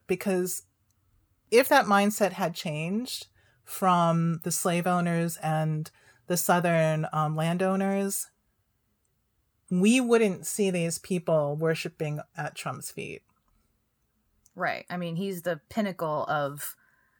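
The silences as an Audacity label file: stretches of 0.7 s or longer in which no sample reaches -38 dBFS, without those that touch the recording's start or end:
0.590000	1.520000	silence
8.250000	9.710000	silence
13.170000	14.460000	silence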